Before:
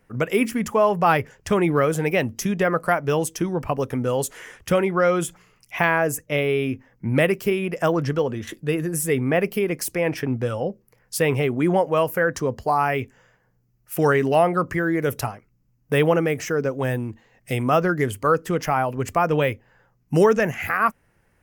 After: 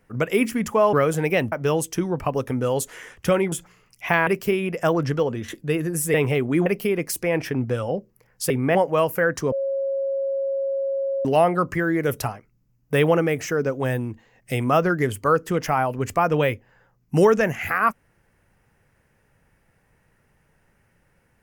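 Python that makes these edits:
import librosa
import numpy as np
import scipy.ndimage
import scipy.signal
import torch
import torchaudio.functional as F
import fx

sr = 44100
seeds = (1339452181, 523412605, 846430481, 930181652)

y = fx.edit(x, sr, fx.cut(start_s=0.93, length_s=0.81),
    fx.cut(start_s=2.33, length_s=0.62),
    fx.cut(start_s=4.95, length_s=0.27),
    fx.cut(start_s=5.97, length_s=1.29),
    fx.swap(start_s=9.13, length_s=0.25, other_s=11.22, other_length_s=0.52),
    fx.bleep(start_s=12.51, length_s=1.73, hz=546.0, db=-21.5), tone=tone)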